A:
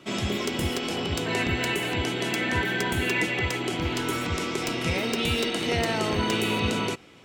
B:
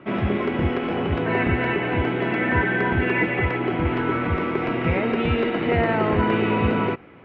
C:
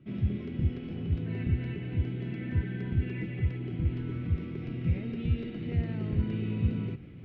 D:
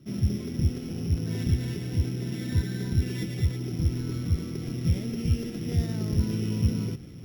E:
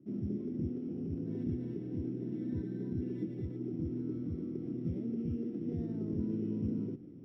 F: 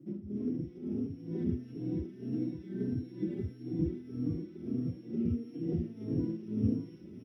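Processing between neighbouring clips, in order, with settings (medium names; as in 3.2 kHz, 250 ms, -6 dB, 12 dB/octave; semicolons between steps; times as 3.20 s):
low-pass 2.1 kHz 24 dB/octave; trim +6 dB
FFT filter 140 Hz 0 dB, 960 Hz -30 dB, 4.6 kHz -9 dB; reverse; upward compressor, threshold -33 dBFS; reverse; trim -2.5 dB
sorted samples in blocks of 8 samples; trim +3.5 dB
band-pass filter 300 Hz, Q 2.2
tremolo 2.1 Hz, depth 85%; feedback echo behind a high-pass 281 ms, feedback 74%, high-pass 1.8 kHz, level -3 dB; endless flanger 3.7 ms +1.6 Hz; trim +8 dB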